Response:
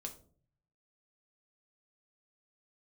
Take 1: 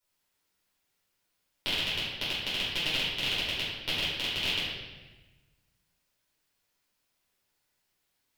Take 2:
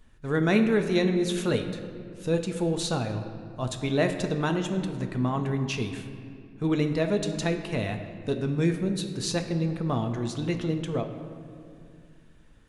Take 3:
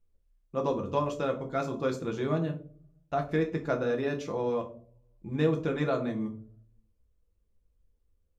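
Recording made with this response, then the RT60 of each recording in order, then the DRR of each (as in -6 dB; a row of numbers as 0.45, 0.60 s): 3; 1.2, 2.3, 0.50 s; -11.0, 5.0, 3.0 dB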